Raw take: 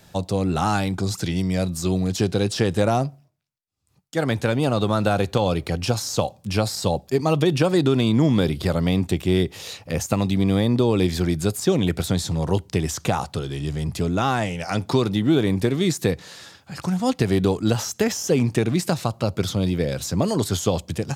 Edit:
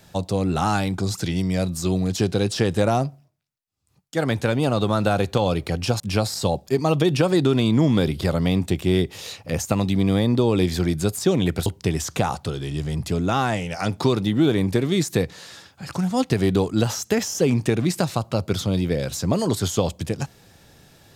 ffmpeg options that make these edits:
-filter_complex "[0:a]asplit=3[a][b][c];[a]atrim=end=6.002[d];[b]atrim=start=6.408:end=12.072[e];[c]atrim=start=12.548[f];[d][e]acrossfade=d=0.004:c1=hsin:c2=hsin[g];[g][f]acrossfade=d=0.004:c1=hsin:c2=hsin"

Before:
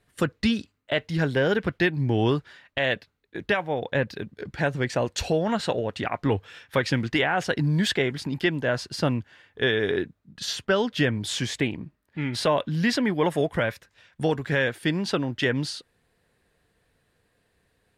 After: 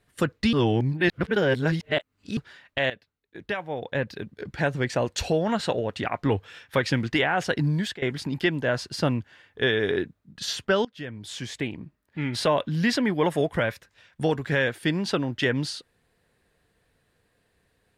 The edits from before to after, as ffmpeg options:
-filter_complex "[0:a]asplit=6[a][b][c][d][e][f];[a]atrim=end=0.532[g];[b]atrim=start=0.528:end=2.372,asetpts=PTS-STARTPTS,areverse[h];[c]atrim=start=2.368:end=2.9,asetpts=PTS-STARTPTS,afade=t=out:st=0.528:d=0.004:c=hsin:silence=0.188365[i];[d]atrim=start=2.9:end=8.02,asetpts=PTS-STARTPTS,afade=t=in:d=1.6:silence=0.188365,afade=t=out:st=4.77:d=0.35:silence=0.0891251[j];[e]atrim=start=8.02:end=10.85,asetpts=PTS-STARTPTS,afade=t=in:d=0.004:c=hsin:silence=0.0891251,afade=t=out:st=2.826:d=0.004:c=hsin:silence=0.0841395[k];[f]atrim=start=10.85,asetpts=PTS-STARTPTS,afade=t=in:d=1.39:silence=0.0841395[l];[g][h]acrossfade=d=0.004:c1=hsin:c2=hsin[m];[i][j][k][l]concat=n=4:v=0:a=1[n];[m][n]acrossfade=d=0.004:c1=hsin:c2=hsin"

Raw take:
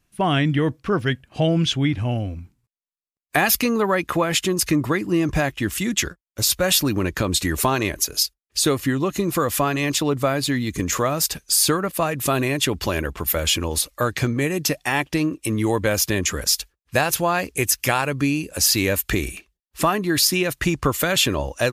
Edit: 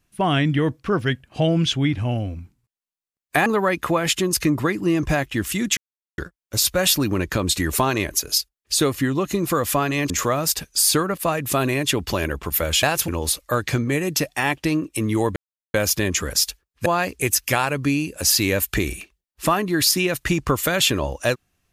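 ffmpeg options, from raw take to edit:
-filter_complex "[0:a]asplit=8[a][b][c][d][e][f][g][h];[a]atrim=end=3.462[i];[b]atrim=start=3.718:end=6.03,asetpts=PTS-STARTPTS,afade=t=out:st=2.308:d=0.004:c=hsin,apad=pad_dur=0.41[j];[c]atrim=start=6.03:end=9.952,asetpts=PTS-STARTPTS,afade=t=in:d=0.004:c=hsin[k];[d]atrim=start=10.838:end=13.572[l];[e]atrim=start=16.968:end=17.222[m];[f]atrim=start=13.568:end=15.85,asetpts=PTS-STARTPTS,afade=t=out:st=2.278:d=0.004:c=hsin,apad=pad_dur=0.38[n];[g]atrim=start=15.85:end=16.972,asetpts=PTS-STARTPTS,afade=t=in:d=0.004:c=hsin[o];[h]atrim=start=17.218[p];[j][k]concat=n=2:v=0:a=1[q];[i][q]acrossfade=d=0.004:c1=hsin:c2=hsin[r];[r][l]acrossfade=d=0.004:c1=hsin:c2=hsin[s];[s][m]acrossfade=d=0.004:c1=hsin:c2=hsin[t];[n][o]concat=n=2:v=0:a=1[u];[t][u]acrossfade=d=0.004:c1=hsin:c2=hsin[v];[v][p]acrossfade=d=0.004:c1=hsin:c2=hsin"

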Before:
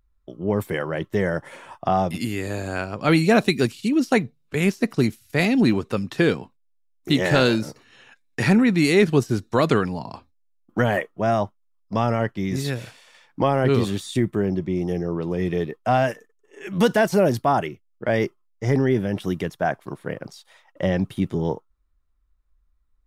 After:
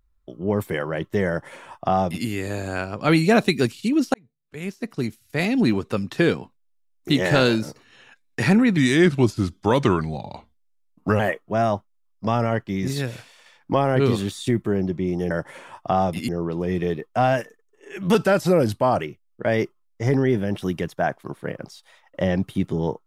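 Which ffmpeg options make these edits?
-filter_complex "[0:a]asplit=8[a][b][c][d][e][f][g][h];[a]atrim=end=4.14,asetpts=PTS-STARTPTS,afade=t=out:st=4.136:d=0.004:c=hsin[i];[b]atrim=start=4.14:end=8.774,asetpts=PTS-STARTPTS,afade=t=in:d=1.75[j];[c]atrim=start=8.77:end=10.88,asetpts=PTS-STARTPTS,asetrate=38367,aresample=44100,atrim=end_sample=106955,asetpts=PTS-STARTPTS[k];[d]atrim=start=10.876:end=14.992[l];[e]atrim=start=1.278:end=2.262[m];[f]atrim=start=14.988:end=16.854[n];[g]atrim=start=16.85:end=17.63,asetpts=PTS-STARTPTS,asetrate=39690,aresample=44100[o];[h]atrim=start=17.626[p];[i][j]concat=n=2:v=0:a=1[q];[q][k]acrossfade=d=0.004:c1=hsin:c2=hsin[r];[r][l]acrossfade=d=0.004:c1=hsin:c2=hsin[s];[s][m]acrossfade=d=0.004:c1=hsin:c2=hsin[t];[t][n]acrossfade=d=0.004:c1=hsin:c2=hsin[u];[u][o]acrossfade=d=0.004:c1=hsin:c2=hsin[v];[v][p]acrossfade=d=0.004:c1=hsin:c2=hsin"

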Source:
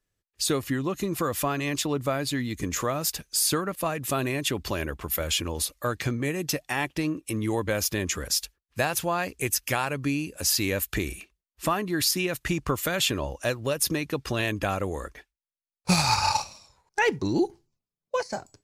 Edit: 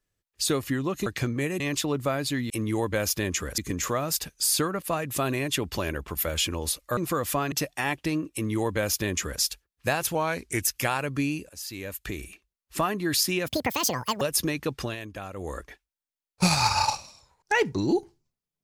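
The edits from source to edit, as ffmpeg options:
-filter_complex "[0:a]asplit=14[a][b][c][d][e][f][g][h][i][j][k][l][m][n];[a]atrim=end=1.062[o];[b]atrim=start=5.898:end=6.442[p];[c]atrim=start=1.608:end=2.512[q];[d]atrim=start=7.248:end=8.332[r];[e]atrim=start=2.508:end=5.902[s];[f]atrim=start=1.058:end=1.612[t];[g]atrim=start=6.438:end=9.074[u];[h]atrim=start=9.07:end=9.5,asetpts=PTS-STARTPTS,asetrate=40131,aresample=44100,atrim=end_sample=20838,asetpts=PTS-STARTPTS[v];[i]atrim=start=9.496:end=10.37,asetpts=PTS-STARTPTS,afade=t=out:st=0.87:d=0.004:c=hsin:silence=0.11885[w];[j]atrim=start=10.37:end=12.354,asetpts=PTS-STARTPTS,afade=t=in:d=1.42:silence=0.11885[x];[k]atrim=start=12.35:end=13.68,asetpts=PTS-STARTPTS,asetrate=79380,aresample=44100[y];[l]atrim=start=13.676:end=14.43,asetpts=PTS-STARTPTS,afade=t=out:st=0.514:d=0.24:c=qsin:silence=0.298538[z];[m]atrim=start=14.43:end=14.82,asetpts=PTS-STARTPTS,volume=-10.5dB[aa];[n]atrim=start=14.82,asetpts=PTS-STARTPTS,afade=t=in:d=0.24:c=qsin:silence=0.298538[ab];[o][p]acrossfade=d=0.004:c1=hsin:c2=hsin[ac];[ac][q]acrossfade=d=0.004:c1=hsin:c2=hsin[ad];[ad][r]acrossfade=d=0.004:c1=hsin:c2=hsin[ae];[ae][s]acrossfade=d=0.004:c1=hsin:c2=hsin[af];[af][t]acrossfade=d=0.004:c1=hsin:c2=hsin[ag];[ag][u]acrossfade=d=0.004:c1=hsin:c2=hsin[ah];[ah][v]acrossfade=d=0.004:c1=hsin:c2=hsin[ai];[w][x]concat=n=2:v=0:a=1[aj];[ai][aj]acrossfade=d=0.004:c1=hsin:c2=hsin[ak];[ak][y]acrossfade=d=0.004:c1=hsin:c2=hsin[al];[z][aa][ab]concat=n=3:v=0:a=1[am];[al][am]acrossfade=d=0.004:c1=hsin:c2=hsin"

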